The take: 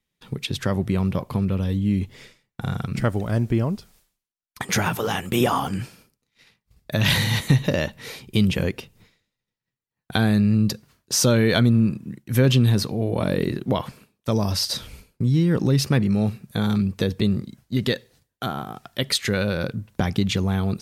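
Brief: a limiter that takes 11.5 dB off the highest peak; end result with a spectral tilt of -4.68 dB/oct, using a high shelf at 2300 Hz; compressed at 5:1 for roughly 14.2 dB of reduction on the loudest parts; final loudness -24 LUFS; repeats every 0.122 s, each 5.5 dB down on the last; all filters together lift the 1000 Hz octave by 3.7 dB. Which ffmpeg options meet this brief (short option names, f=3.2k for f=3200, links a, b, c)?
-af "equalizer=f=1k:t=o:g=3,highshelf=f=2.3k:g=9,acompressor=threshold=-28dB:ratio=5,alimiter=limit=-21.5dB:level=0:latency=1,aecho=1:1:122|244|366|488|610|732|854:0.531|0.281|0.149|0.079|0.0419|0.0222|0.0118,volume=8dB"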